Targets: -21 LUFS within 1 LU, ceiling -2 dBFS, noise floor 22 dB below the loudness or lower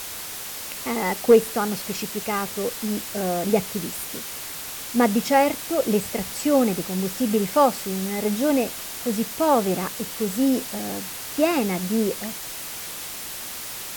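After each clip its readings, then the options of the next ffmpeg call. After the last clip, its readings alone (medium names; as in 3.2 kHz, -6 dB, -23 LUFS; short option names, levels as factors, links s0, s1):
noise floor -34 dBFS; noise floor target -46 dBFS; loudness -24.0 LUFS; peak level -6.0 dBFS; loudness target -21.0 LUFS
-> -af "afftdn=nr=12:nf=-34"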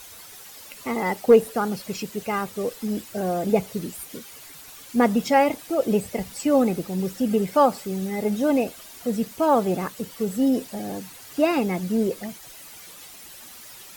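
noise floor -44 dBFS; noise floor target -46 dBFS
-> -af "afftdn=nr=6:nf=-44"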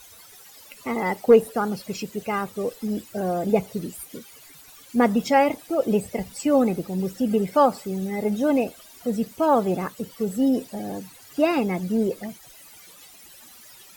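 noise floor -48 dBFS; loudness -24.0 LUFS; peak level -6.0 dBFS; loudness target -21.0 LUFS
-> -af "volume=1.41"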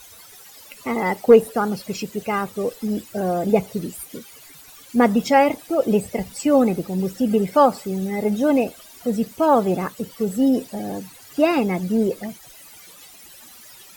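loudness -21.0 LUFS; peak level -3.5 dBFS; noise floor -45 dBFS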